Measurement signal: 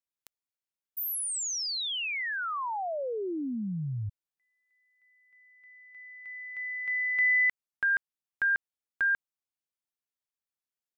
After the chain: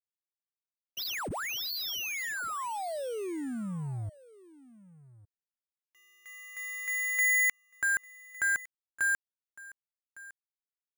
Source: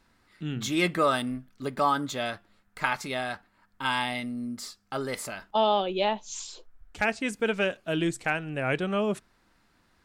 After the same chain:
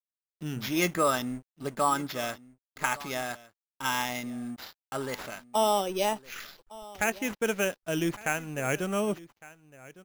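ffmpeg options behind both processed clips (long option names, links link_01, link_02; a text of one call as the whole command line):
ffmpeg -i in.wav -af "acrusher=samples=5:mix=1:aa=0.000001,aeval=exprs='sgn(val(0))*max(abs(val(0))-0.00422,0)':channel_layout=same,aecho=1:1:1158:0.1,volume=-1dB" out.wav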